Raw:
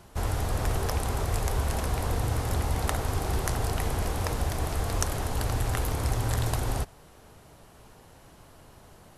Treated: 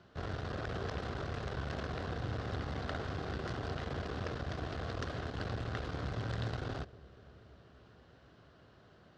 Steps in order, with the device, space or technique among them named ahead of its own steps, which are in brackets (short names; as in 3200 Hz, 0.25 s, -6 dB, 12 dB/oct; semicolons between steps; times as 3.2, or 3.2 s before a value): analogue delay pedal into a guitar amplifier (analogue delay 0.239 s, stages 1024, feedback 79%, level -21 dB; tube stage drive 24 dB, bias 0.65; speaker cabinet 95–4500 Hz, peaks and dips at 890 Hz -9 dB, 1500 Hz +4 dB, 2300 Hz -5 dB); gain -3 dB